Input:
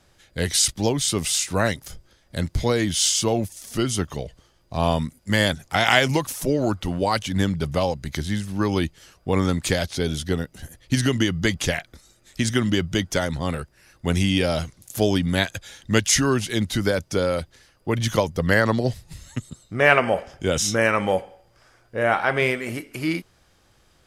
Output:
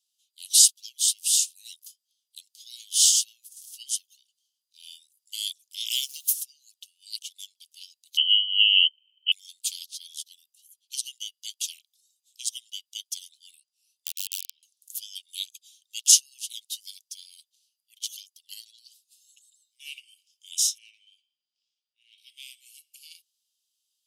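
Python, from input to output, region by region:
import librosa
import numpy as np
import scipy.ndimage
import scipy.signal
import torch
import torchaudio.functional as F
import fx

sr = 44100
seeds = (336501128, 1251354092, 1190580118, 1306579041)

y = fx.high_shelf(x, sr, hz=11000.0, db=11.0, at=(5.9, 6.32), fade=0.02)
y = fx.notch(y, sr, hz=7800.0, q=22.0, at=(5.9, 6.32), fade=0.02)
y = fx.dmg_noise_colour(y, sr, seeds[0], colour='pink', level_db=-44.0, at=(5.9, 6.32), fade=0.02)
y = fx.chain(y, sr, fx.low_shelf(hz=400.0, db=8.0),
    fx.freq_invert(carrier_hz=3100), at=(8.17, 9.32))
y = fx.chain(y, sr, fx.env_lowpass_down(base_hz=1200.0, full_db=-20.0),
    fx.overflow_wrap(gain_db=13.5), at=(13.58, 14.63))
y = fx.chain(y, sr, fx.lowpass(hz=3600.0, slope=12),
    fx.transient(attack_db=-7, sustain_db=1), at=(20.78, 22.18))
y = scipy.signal.sosfilt(scipy.signal.butter(12, 2800.0, 'highpass', fs=sr, output='sos'), y)
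y = fx.high_shelf(y, sr, hz=7400.0, db=10.5)
y = fx.upward_expand(y, sr, threshold_db=-45.0, expansion=1.5)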